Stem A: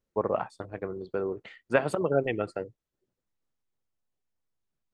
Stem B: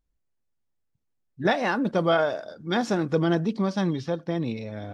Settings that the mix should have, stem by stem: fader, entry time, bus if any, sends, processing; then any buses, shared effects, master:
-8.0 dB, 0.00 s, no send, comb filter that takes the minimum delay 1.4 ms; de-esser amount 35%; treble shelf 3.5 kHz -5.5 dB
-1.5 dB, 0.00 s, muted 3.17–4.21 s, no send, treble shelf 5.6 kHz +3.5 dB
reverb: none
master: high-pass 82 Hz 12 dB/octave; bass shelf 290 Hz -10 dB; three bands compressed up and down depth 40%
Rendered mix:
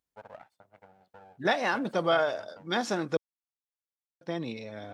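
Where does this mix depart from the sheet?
stem A -8.0 dB -> -17.0 dB; master: missing three bands compressed up and down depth 40%

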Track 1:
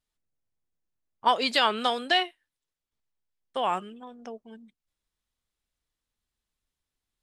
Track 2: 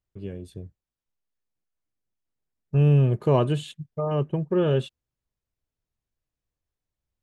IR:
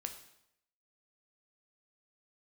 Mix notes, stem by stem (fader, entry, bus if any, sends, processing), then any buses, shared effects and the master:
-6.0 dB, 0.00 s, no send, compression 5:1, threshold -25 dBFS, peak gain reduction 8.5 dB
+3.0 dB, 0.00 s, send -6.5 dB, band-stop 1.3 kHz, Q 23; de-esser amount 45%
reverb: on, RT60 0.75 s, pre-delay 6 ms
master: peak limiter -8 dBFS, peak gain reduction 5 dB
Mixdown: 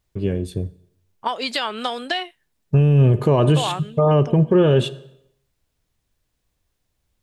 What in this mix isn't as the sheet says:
stem 1 -6.0 dB -> +4.5 dB; stem 2 +3.0 dB -> +10.5 dB

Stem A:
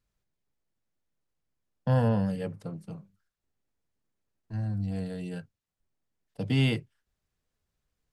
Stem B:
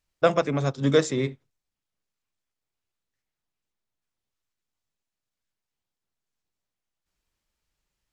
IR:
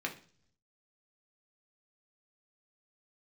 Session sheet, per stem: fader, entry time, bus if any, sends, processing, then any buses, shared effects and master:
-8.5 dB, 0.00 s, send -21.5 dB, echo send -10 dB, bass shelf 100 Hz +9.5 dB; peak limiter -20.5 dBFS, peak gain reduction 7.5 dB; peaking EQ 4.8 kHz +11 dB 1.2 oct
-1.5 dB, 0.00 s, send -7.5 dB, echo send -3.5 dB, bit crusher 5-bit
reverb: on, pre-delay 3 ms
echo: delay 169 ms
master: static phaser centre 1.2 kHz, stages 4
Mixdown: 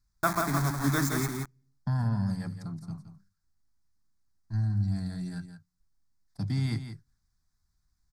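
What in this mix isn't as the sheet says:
stem A -8.5 dB -> 0.0 dB; reverb return -7.0 dB

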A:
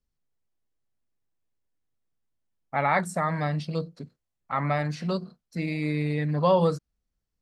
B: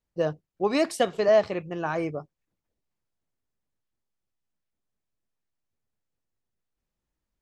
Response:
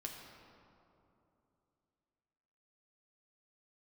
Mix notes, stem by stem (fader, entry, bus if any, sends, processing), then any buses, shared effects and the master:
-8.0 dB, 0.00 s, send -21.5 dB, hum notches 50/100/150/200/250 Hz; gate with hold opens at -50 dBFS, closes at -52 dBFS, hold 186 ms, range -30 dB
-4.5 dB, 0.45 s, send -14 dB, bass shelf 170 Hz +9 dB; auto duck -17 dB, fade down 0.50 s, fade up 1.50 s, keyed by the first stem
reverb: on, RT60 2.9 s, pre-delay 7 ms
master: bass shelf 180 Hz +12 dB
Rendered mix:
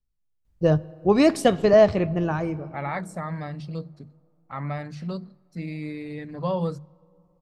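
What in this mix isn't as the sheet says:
stem A: missing gate with hold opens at -50 dBFS, closes at -52 dBFS, hold 186 ms, range -30 dB; stem B -4.5 dB -> +1.5 dB

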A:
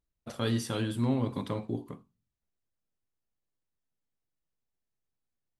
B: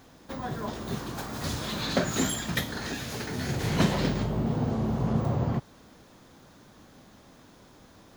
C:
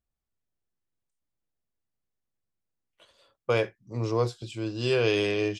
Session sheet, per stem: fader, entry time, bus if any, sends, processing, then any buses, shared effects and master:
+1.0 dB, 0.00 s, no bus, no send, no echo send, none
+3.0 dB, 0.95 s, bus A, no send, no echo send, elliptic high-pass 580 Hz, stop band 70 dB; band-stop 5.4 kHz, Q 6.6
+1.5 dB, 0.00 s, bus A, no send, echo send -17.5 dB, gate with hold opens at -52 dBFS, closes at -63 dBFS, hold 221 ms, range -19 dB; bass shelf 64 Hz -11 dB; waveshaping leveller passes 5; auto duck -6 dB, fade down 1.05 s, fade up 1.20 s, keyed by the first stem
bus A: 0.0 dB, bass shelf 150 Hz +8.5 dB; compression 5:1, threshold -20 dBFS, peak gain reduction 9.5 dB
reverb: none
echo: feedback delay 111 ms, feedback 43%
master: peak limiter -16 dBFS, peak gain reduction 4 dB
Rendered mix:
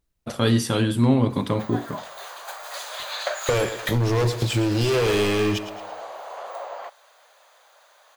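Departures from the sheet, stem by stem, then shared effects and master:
stem A +1.0 dB -> +10.0 dB; stem B: entry 0.95 s -> 1.30 s; master: missing peak limiter -16 dBFS, peak gain reduction 4 dB

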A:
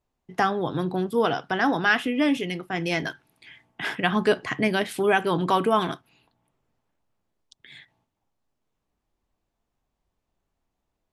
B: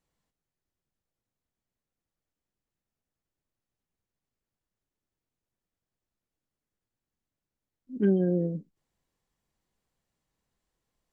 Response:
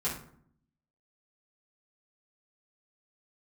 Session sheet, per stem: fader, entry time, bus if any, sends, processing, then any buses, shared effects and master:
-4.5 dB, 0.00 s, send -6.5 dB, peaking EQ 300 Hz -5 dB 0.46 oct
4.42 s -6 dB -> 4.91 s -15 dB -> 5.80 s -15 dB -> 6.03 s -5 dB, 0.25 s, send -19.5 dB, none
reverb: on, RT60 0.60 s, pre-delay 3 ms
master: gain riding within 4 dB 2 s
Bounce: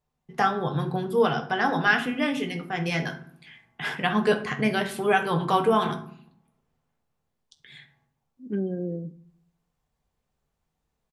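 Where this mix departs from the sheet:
stem B: entry 0.25 s -> 0.50 s; master: missing gain riding within 4 dB 2 s

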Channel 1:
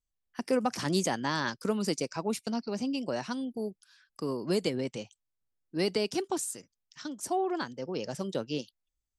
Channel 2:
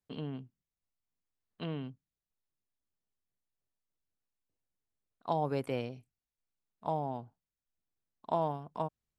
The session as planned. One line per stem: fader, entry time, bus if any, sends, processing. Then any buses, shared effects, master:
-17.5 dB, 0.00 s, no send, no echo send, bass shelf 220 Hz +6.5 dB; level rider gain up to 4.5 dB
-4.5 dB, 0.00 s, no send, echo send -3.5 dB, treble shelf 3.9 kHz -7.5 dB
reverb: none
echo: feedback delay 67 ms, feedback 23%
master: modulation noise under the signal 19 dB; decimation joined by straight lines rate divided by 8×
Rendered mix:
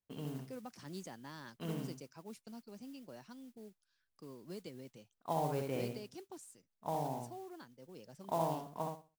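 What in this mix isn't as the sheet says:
stem 1 -17.5 dB -> -25.0 dB; master: missing decimation joined by straight lines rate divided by 8×

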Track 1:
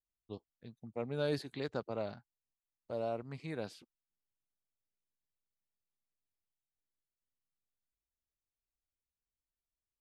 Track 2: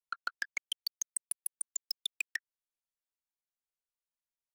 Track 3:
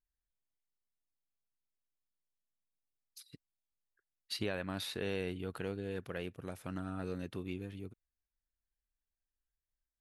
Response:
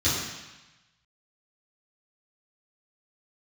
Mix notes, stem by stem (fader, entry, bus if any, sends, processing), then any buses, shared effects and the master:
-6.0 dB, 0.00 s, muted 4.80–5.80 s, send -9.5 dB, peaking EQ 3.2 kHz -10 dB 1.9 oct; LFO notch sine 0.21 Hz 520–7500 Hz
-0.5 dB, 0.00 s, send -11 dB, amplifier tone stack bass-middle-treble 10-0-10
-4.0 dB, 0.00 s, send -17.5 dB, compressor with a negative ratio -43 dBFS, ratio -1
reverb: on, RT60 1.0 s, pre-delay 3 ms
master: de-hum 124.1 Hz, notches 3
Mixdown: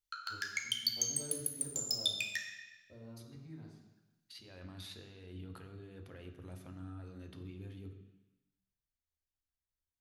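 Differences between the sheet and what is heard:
stem 1 -6.0 dB -> -17.0 dB; stem 3 -4.0 dB -> -10.5 dB

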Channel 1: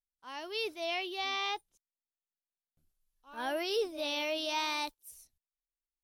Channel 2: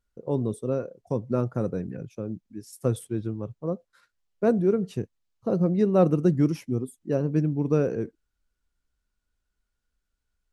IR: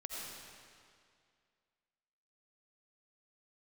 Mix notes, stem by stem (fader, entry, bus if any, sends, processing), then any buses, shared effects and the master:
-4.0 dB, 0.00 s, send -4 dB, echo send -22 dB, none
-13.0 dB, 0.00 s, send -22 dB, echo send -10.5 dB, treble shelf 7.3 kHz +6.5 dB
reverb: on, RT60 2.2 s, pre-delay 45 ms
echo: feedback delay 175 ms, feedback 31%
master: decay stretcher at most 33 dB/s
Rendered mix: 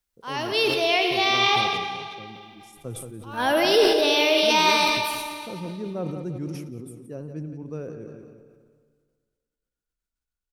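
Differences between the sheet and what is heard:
stem 1 -4.0 dB -> +7.0 dB; reverb return +8.0 dB

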